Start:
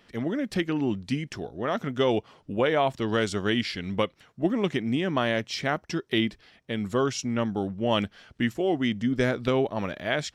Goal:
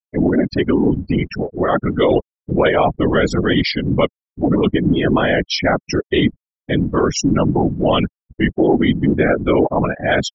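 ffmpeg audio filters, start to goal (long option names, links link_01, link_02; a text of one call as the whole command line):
ffmpeg -i in.wav -af "apsyclip=23dB,afftfilt=real='re*gte(hypot(re,im),0.501)':imag='im*gte(hypot(re,im),0.501)':win_size=1024:overlap=0.75,afftfilt=real='hypot(re,im)*cos(2*PI*random(0))':imag='hypot(re,im)*sin(2*PI*random(1))':win_size=512:overlap=0.75,volume=-3dB" out.wav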